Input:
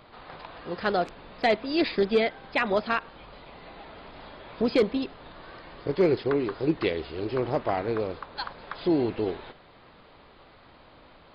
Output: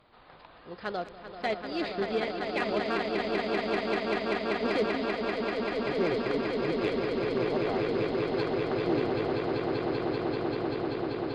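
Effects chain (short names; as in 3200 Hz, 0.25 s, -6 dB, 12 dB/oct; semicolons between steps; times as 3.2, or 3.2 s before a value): swelling echo 0.194 s, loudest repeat 8, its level -5 dB; added harmonics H 5 -25 dB, 7 -25 dB, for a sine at -8 dBFS; gain -8.5 dB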